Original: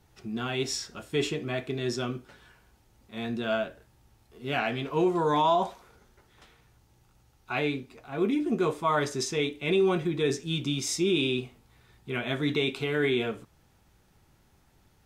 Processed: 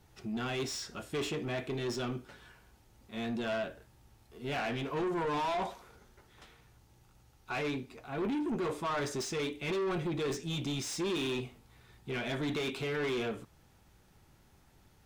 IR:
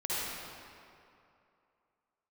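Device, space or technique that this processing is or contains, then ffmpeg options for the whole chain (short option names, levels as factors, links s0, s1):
saturation between pre-emphasis and de-emphasis: -af "highshelf=f=4600:g=10.5,asoftclip=type=tanh:threshold=0.0316,highshelf=f=4600:g=-10.5"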